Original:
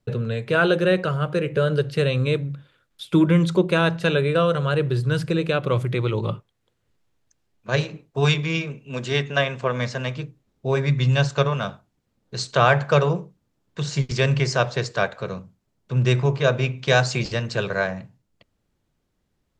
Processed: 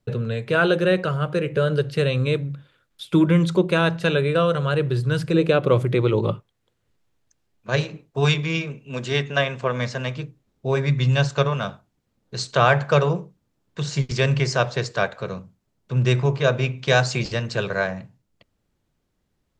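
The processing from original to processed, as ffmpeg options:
ffmpeg -i in.wav -filter_complex "[0:a]asettb=1/sr,asplit=3[link_01][link_02][link_03];[link_01]atrim=end=5.334[link_04];[link_02]atrim=start=5.33:end=6.32,asetpts=PTS-STARTPTS,afade=type=in:duration=0.004:curve=qsin,afade=type=out:start_time=0.986:duration=0.004:curve=qsin,equalizer=frequency=390:width_type=o:width=2.1:gain=6[link_05];[link_03]atrim=start=6.316[link_06];[link_04][link_05]acrossfade=duration=0.004:curve1=hsin:curve2=qsin[link_07];[link_07][link_06]acrossfade=duration=0.004:curve1=qsin:curve2=hsin" out.wav

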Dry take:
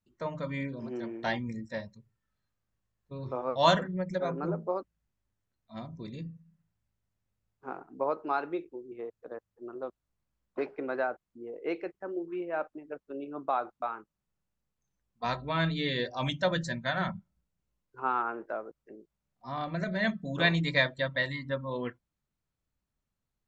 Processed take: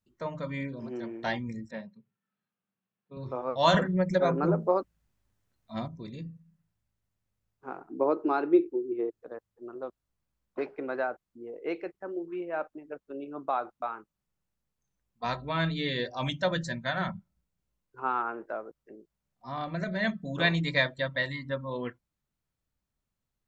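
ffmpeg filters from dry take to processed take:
ffmpeg -i in.wav -filter_complex "[0:a]asettb=1/sr,asplit=3[link_01][link_02][link_03];[link_01]atrim=end=1.714[link_04];[link_02]atrim=start=1.71:end=3.17,asetpts=PTS-STARTPTS,afade=type=in:duration=0.004:curve=qsin,afade=type=out:start_time=1.456:duration=0.004:curve=qsin,highpass=frequency=170:width=0.5412,highpass=frequency=170:width=1.3066,equalizer=frequency=190:width_type=q:width=4:gain=6,equalizer=frequency=310:width_type=q:width=4:gain=-6,equalizer=frequency=580:width_type=q:width=4:gain=-5,equalizer=frequency=1000:width_type=q:width=4:gain=-4,equalizer=frequency=1900:width_type=q:width=4:gain=-5,lowpass=frequency=3200:width=0.5412,lowpass=frequency=3200:width=1.3066[link_05];[link_03]atrim=start=3.166[link_06];[link_04][link_05]acrossfade=duration=0.004:curve1=hsin:curve2=qsin[link_07];[link_07][link_06]acrossfade=duration=0.004:curve1=qsin:curve2=hsin,asettb=1/sr,asplit=3[link_08][link_09][link_10];[link_08]atrim=end=3.744[link_11];[link_09]atrim=start=3.74:end=5.88,asetpts=PTS-STARTPTS,afade=type=in:duration=0.004:curve=qsin,afade=type=out:start_time=2.136:duration=0.004:curve=qsin,acontrast=70[link_12];[link_10]atrim=start=5.876[link_13];[link_11][link_12]acrossfade=duration=0.004:curve1=hsin:curve2=qsin[link_14];[link_14][link_13]acrossfade=duration=0.004:curve1=qsin:curve2=hsin,asettb=1/sr,asplit=3[link_15][link_16][link_17];[link_15]atrim=end=7.894[link_18];[link_16]atrim=start=7.89:end=9.2,asetpts=PTS-STARTPTS,afade=type=in:duration=0.004:curve=qsin,afade=type=out:start_time=1.306:duration=0.004:curve=qsin,equalizer=frequency=340:width=1.9:gain=14[link_19];[link_17]atrim=start=9.196[link_20];[link_18][link_19]acrossfade=duration=0.004:curve1=hsin:curve2=qsin[link_21];[link_21][link_20]acrossfade=duration=0.004:curve1=qsin:curve2=hsin" out.wav

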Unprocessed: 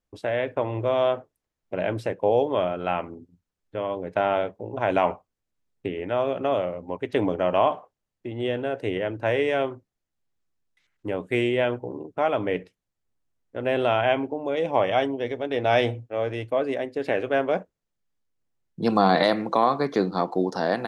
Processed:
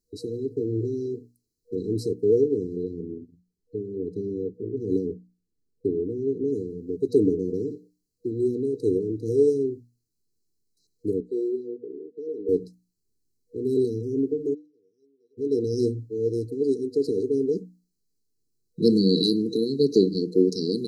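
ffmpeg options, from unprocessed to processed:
ffmpeg -i in.wav -filter_complex "[0:a]asettb=1/sr,asplit=3[link_01][link_02][link_03];[link_01]atrim=end=2.834[link_04];[link_02]atrim=start=2.83:end=6.48,asetpts=PTS-STARTPTS,afade=type=in:duration=0.004:curve=qsin,afade=type=out:start_time=3.646:duration=0.004:curve=qsin,highshelf=frequency=2300:gain=-10.5[link_05];[link_03]atrim=start=6.476[link_06];[link_04][link_05]acrossfade=duration=0.004:curve1=hsin:curve2=qsin[link_07];[link_07][link_06]acrossfade=duration=0.004:curve1=qsin:curve2=hsin,asettb=1/sr,asplit=3[link_08][link_09][link_10];[link_08]atrim=end=11.204[link_11];[link_09]atrim=start=11.2:end=12.49,asetpts=PTS-STARTPTS,afade=type=in:duration=0.004:curve=qsin,afade=type=out:start_time=1.286:duration=0.004:curve=qsin,highpass=530,lowpass=2300[link_12];[link_10]atrim=start=12.486[link_13];[link_11][link_12]acrossfade=duration=0.004:curve1=hsin:curve2=qsin[link_14];[link_14][link_13]acrossfade=duration=0.004:curve1=qsin:curve2=hsin,asplit=3[link_15][link_16][link_17];[link_15]afade=type=out:start_time=14.53:duration=0.02[link_18];[link_16]bandpass=frequency=1900:width_type=q:width=19,afade=type=in:start_time=14.53:duration=0.02,afade=type=out:start_time=15.37:duration=0.02[link_19];[link_17]afade=type=in:start_time=15.37:duration=0.02[link_20];[link_18][link_19][link_20]amix=inputs=3:normalize=0,bandreject=frequency=60:width_type=h:width=6,bandreject=frequency=120:width_type=h:width=6,bandreject=frequency=180:width_type=h:width=6,bandreject=frequency=240:width_type=h:width=6,bandreject=frequency=300:width_type=h:width=6,afftfilt=real='re*(1-between(b*sr/4096,480,3900))':imag='im*(1-between(b*sr/4096,480,3900))':win_size=4096:overlap=0.75,lowshelf=frequency=210:gain=-6.5,volume=7.5dB" out.wav

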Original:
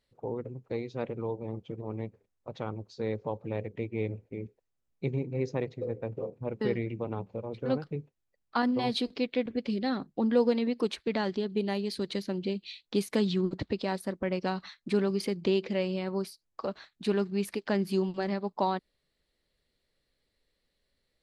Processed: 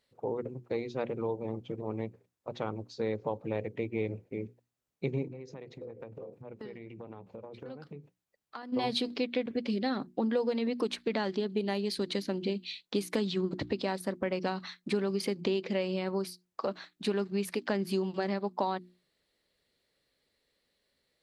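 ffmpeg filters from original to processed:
ffmpeg -i in.wav -filter_complex "[0:a]asplit=3[link_01][link_02][link_03];[link_01]afade=type=out:start_time=5.27:duration=0.02[link_04];[link_02]acompressor=threshold=-41dB:ratio=16:attack=3.2:release=140:knee=1:detection=peak,afade=type=in:start_time=5.27:duration=0.02,afade=type=out:start_time=8.72:duration=0.02[link_05];[link_03]afade=type=in:start_time=8.72:duration=0.02[link_06];[link_04][link_05][link_06]amix=inputs=3:normalize=0,highpass=frequency=150:poles=1,bandreject=frequency=60:width_type=h:width=6,bandreject=frequency=120:width_type=h:width=6,bandreject=frequency=180:width_type=h:width=6,bandreject=frequency=240:width_type=h:width=6,bandreject=frequency=300:width_type=h:width=6,bandreject=frequency=360:width_type=h:width=6,acompressor=threshold=-30dB:ratio=4,volume=3dB" out.wav

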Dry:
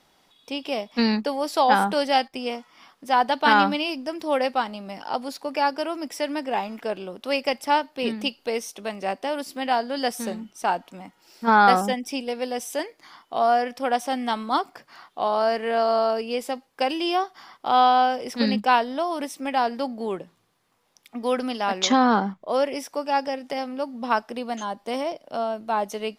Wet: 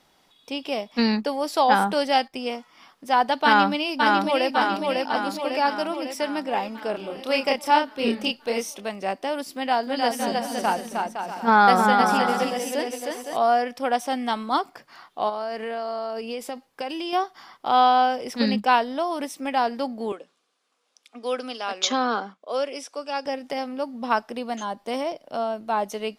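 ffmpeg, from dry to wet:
ffmpeg -i in.wav -filter_complex "[0:a]asplit=2[link_01][link_02];[link_02]afade=type=in:start_time=3.44:duration=0.01,afade=type=out:start_time=4.5:duration=0.01,aecho=0:1:550|1100|1650|2200|2750|3300|3850|4400|4950:0.749894|0.449937|0.269962|0.161977|0.0971863|0.0583118|0.0349871|0.0209922|0.0125953[link_03];[link_01][link_03]amix=inputs=2:normalize=0,asplit=3[link_04][link_05][link_06];[link_04]afade=type=out:start_time=6.93:duration=0.02[link_07];[link_05]asplit=2[link_08][link_09];[link_09]adelay=30,volume=-2.5dB[link_10];[link_08][link_10]amix=inputs=2:normalize=0,afade=type=in:start_time=6.93:duration=0.02,afade=type=out:start_time=8.79:duration=0.02[link_11];[link_06]afade=type=in:start_time=8.79:duration=0.02[link_12];[link_07][link_11][link_12]amix=inputs=3:normalize=0,asettb=1/sr,asplit=3[link_13][link_14][link_15];[link_13]atrim=end=9.524[link_16];[link_14]atrim=start=9.52:end=13.37,asetpts=PTS-STARTPTS,afade=type=in:duration=0.004:curve=qsin,afade=type=out:start_time=3.846:duration=0.004:curve=qsin,aecho=1:1:310|511.5|642.5|727.6|782.9:0.631|0.398|0.251|0.158|0.1,atrim=end_sample=169785[link_17];[link_15]atrim=start=13.366[link_18];[link_16][link_17]acrossfade=duration=0.004:curve1=hsin:curve2=qsin[link_19];[link_19][link_18]acrossfade=duration=0.004:curve1=qsin:curve2=hsin,asettb=1/sr,asplit=3[link_20][link_21][link_22];[link_20]atrim=end=15.294[link_23];[link_21]atrim=start=15.29:end=17.13,asetpts=PTS-STARTPTS,afade=type=in:duration=0.004:curve=qsin,afade=type=out:start_time=1.836:duration=0.004:curve=qsin,acompressor=threshold=-27dB:ratio=4:attack=3.2:release=140:knee=1:detection=peak[link_24];[link_22]atrim=start=17.126[link_25];[link_23][link_24]acrossfade=duration=0.004:curve1=hsin:curve2=qsin[link_26];[link_26][link_25]acrossfade=duration=0.004:curve1=qsin:curve2=hsin,asettb=1/sr,asplit=3[link_27][link_28][link_29];[link_27]atrim=end=20.124[link_30];[link_28]atrim=start=20.12:end=23.26,asetpts=PTS-STARTPTS,afade=type=in:duration=0.004:curve=qsin,afade=type=out:start_time=3.136:duration=0.004:curve=qsin,highpass=frequency=300:width=0.5412,highpass=frequency=300:width=1.3066,equalizer=frequency=350:width_type=q:width=4:gain=-10,equalizer=frequency=630:width_type=q:width=4:gain=-4,equalizer=frequency=900:width_type=q:width=4:gain=-9,equalizer=frequency=1900:width_type=q:width=4:gain=-7,lowpass=frequency=9700:width=0.5412,lowpass=frequency=9700:width=1.3066[link_31];[link_29]atrim=start=23.256[link_32];[link_30][link_31]acrossfade=duration=0.004:curve1=hsin:curve2=qsin[link_33];[link_33][link_32]acrossfade=duration=0.004:curve1=qsin:curve2=hsin" out.wav

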